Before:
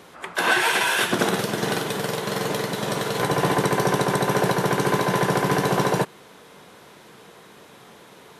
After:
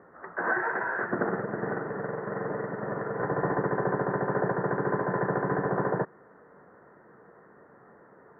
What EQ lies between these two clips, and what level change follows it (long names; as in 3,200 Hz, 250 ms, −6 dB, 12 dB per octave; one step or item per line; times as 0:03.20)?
Chebyshev low-pass with heavy ripple 1,900 Hz, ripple 3 dB
−5.0 dB